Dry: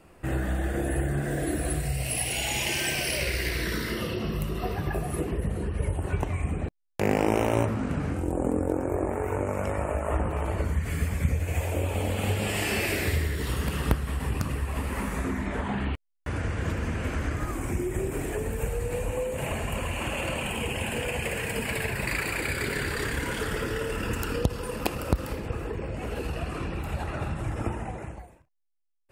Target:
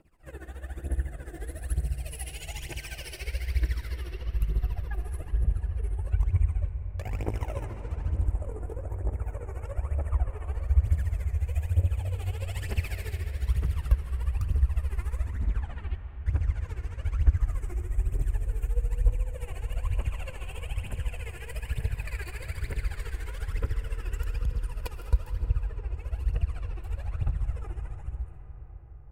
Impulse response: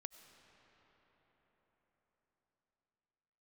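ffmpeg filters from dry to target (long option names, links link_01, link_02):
-filter_complex "[0:a]asubboost=boost=9:cutoff=73,aphaser=in_gain=1:out_gain=1:delay=2.9:decay=0.73:speed=1.1:type=triangular,tremolo=f=14:d=0.84[link_01];[1:a]atrim=start_sample=2205,asetrate=33957,aresample=44100[link_02];[link_01][link_02]afir=irnorm=-1:irlink=0,volume=-8.5dB"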